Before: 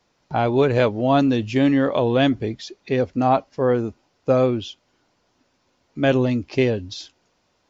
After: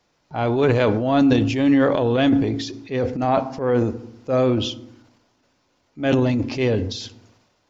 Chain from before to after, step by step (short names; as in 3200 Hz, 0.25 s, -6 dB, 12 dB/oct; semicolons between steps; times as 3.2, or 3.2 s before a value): FDN reverb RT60 0.7 s, low-frequency decay 1.55×, high-frequency decay 0.55×, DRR 14.5 dB; transient shaper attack -8 dB, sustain +8 dB